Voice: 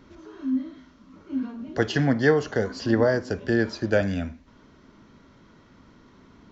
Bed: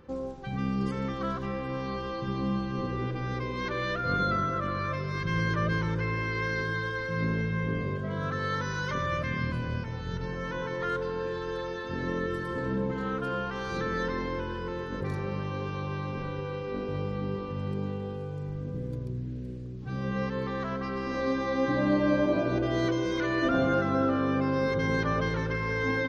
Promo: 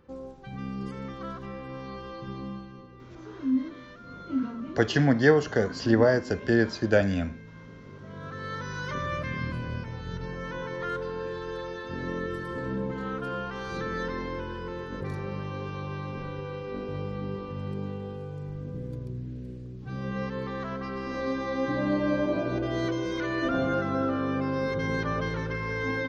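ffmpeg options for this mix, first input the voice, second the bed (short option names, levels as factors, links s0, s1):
-filter_complex "[0:a]adelay=3000,volume=1[s0];[1:a]volume=3.35,afade=t=out:st=2.32:d=0.54:silence=0.251189,afade=t=in:st=7.83:d=1.13:silence=0.158489[s1];[s0][s1]amix=inputs=2:normalize=0"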